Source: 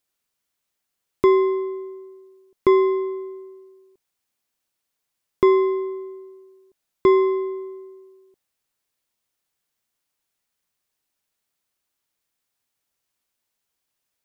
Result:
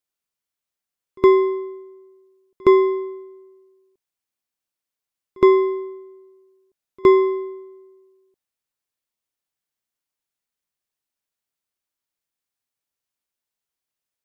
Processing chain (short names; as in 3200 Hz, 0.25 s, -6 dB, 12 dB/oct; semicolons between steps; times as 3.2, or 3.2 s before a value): reverse echo 66 ms -20 dB; upward expander 1.5:1, over -33 dBFS; gain +3 dB